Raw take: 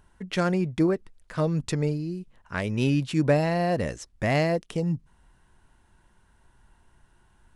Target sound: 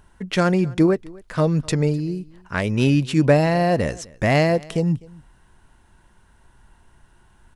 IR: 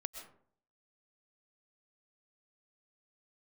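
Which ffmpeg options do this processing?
-af "aecho=1:1:253:0.0668,volume=6dB"

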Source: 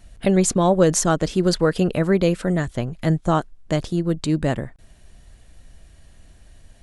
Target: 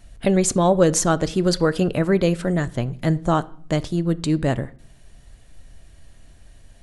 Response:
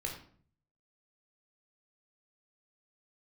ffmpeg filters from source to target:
-filter_complex "[0:a]asplit=2[a][b];[1:a]atrim=start_sample=2205,adelay=7[c];[b][c]afir=irnorm=-1:irlink=0,volume=-16.5dB[d];[a][d]amix=inputs=2:normalize=0"

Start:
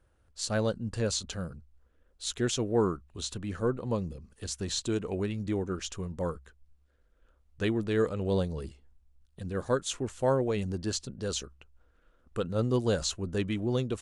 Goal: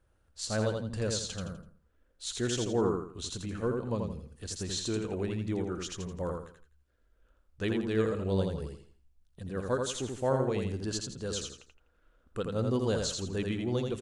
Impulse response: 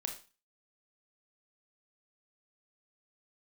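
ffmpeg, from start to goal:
-af "aecho=1:1:83|166|249|332:0.631|0.202|0.0646|0.0207,volume=-3dB"

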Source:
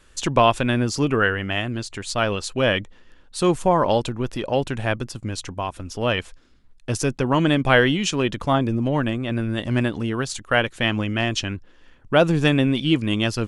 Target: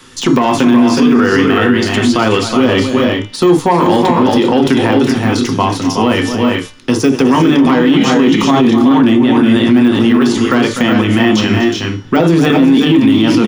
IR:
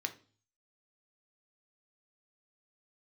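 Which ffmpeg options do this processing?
-filter_complex "[0:a]bandreject=f=296:t=h:w=4,bandreject=f=592:t=h:w=4,bandreject=f=888:t=h:w=4,bandreject=f=1.184k:t=h:w=4,bandreject=f=1.48k:t=h:w=4,bandreject=f=1.776k:t=h:w=4,bandreject=f=2.072k:t=h:w=4,bandreject=f=2.368k:t=h:w=4,bandreject=f=2.664k:t=h:w=4,bandreject=f=2.96k:t=h:w=4,bandreject=f=3.256k:t=h:w=4,bandreject=f=3.552k:t=h:w=4,bandreject=f=3.848k:t=h:w=4,bandreject=f=4.144k:t=h:w=4,bandreject=f=4.44k:t=h:w=4,bandreject=f=4.736k:t=h:w=4,bandreject=f=5.032k:t=h:w=4,bandreject=f=5.328k:t=h:w=4,bandreject=f=5.624k:t=h:w=4,bandreject=f=5.92k:t=h:w=4,bandreject=f=6.216k:t=h:w=4,bandreject=f=6.512k:t=h:w=4,bandreject=f=6.808k:t=h:w=4,bandreject=f=7.104k:t=h:w=4,bandreject=f=7.4k:t=h:w=4,bandreject=f=7.696k:t=h:w=4,bandreject=f=7.992k:t=h:w=4,bandreject=f=8.288k:t=h:w=4,bandreject=f=8.584k:t=h:w=4,bandreject=f=8.88k:t=h:w=4,bandreject=f=9.176k:t=h:w=4,bandreject=f=9.472k:t=h:w=4,bandreject=f=9.768k:t=h:w=4,bandreject=f=10.064k:t=h:w=4,bandreject=f=10.36k:t=h:w=4,bandreject=f=10.656k:t=h:w=4,bandreject=f=10.952k:t=h:w=4,bandreject=f=11.248k:t=h:w=4,bandreject=f=11.544k:t=h:w=4,bandreject=f=11.84k:t=h:w=4,deesser=0.9,equalizer=f=250:t=o:w=0.33:g=7,equalizer=f=630:t=o:w=0.33:g=-9,equalizer=f=1.6k:t=o:w=0.33:g=-8,equalizer=f=2.5k:t=o:w=0.33:g=-8,equalizer=f=8k:t=o:w=0.33:g=-5,acrossover=split=200|880[a][b][c];[a]acompressor=threshold=-36dB:ratio=6[d];[d][b][c]amix=inputs=3:normalize=0,asoftclip=type=tanh:threshold=-12.5dB,aecho=1:1:249|369|398:0.2|0.473|0.398[e];[1:a]atrim=start_sample=2205,atrim=end_sample=3528[f];[e][f]afir=irnorm=-1:irlink=0,alimiter=level_in=20.5dB:limit=-1dB:release=50:level=0:latency=1,volume=-1dB"

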